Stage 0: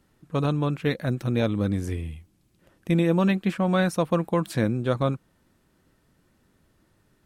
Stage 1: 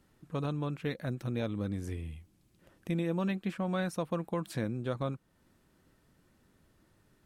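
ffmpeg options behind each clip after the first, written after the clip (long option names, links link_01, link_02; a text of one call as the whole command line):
ffmpeg -i in.wav -af "acompressor=threshold=-41dB:ratio=1.5,volume=-2.5dB" out.wav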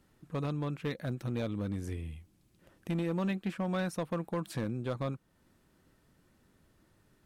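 ffmpeg -i in.wav -af "asoftclip=type=hard:threshold=-27dB" out.wav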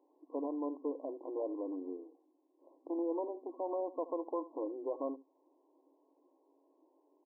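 ffmpeg -i in.wav -filter_complex "[0:a]afftfilt=real='re*between(b*sr/4096,260,1100)':imag='im*between(b*sr/4096,260,1100)':win_size=4096:overlap=0.75,asplit=2[link_01][link_02];[link_02]alimiter=level_in=8dB:limit=-24dB:level=0:latency=1:release=49,volume=-8dB,volume=3dB[link_03];[link_01][link_03]amix=inputs=2:normalize=0,aecho=1:1:75:0.15,volume=-5.5dB" out.wav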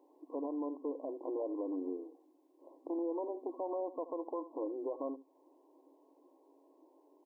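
ffmpeg -i in.wav -af "alimiter=level_in=11dB:limit=-24dB:level=0:latency=1:release=312,volume=-11dB,volume=5.5dB" out.wav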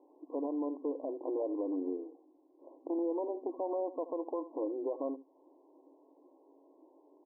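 ffmpeg -i in.wav -af "lowpass=frequency=1000:width=0.5412,lowpass=frequency=1000:width=1.3066,volume=3dB" out.wav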